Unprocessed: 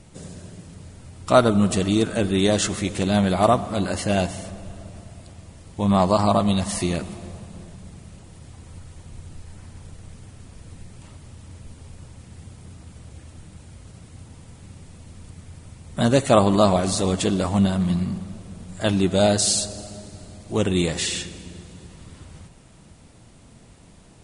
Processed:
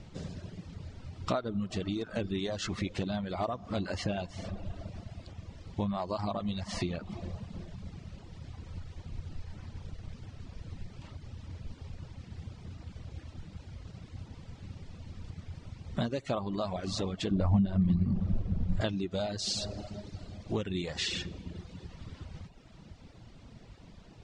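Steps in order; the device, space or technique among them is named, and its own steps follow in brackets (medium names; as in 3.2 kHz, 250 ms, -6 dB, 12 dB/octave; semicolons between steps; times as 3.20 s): low-pass 5.3 kHz 24 dB/octave; ASMR close-microphone chain (bass shelf 130 Hz +4 dB; compression 10:1, threshold -26 dBFS, peak gain reduction 17 dB; treble shelf 7.5 kHz +5 dB); reverb removal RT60 0.94 s; 17.31–18.81 s: tilt EQ -3 dB/octave; trim -2 dB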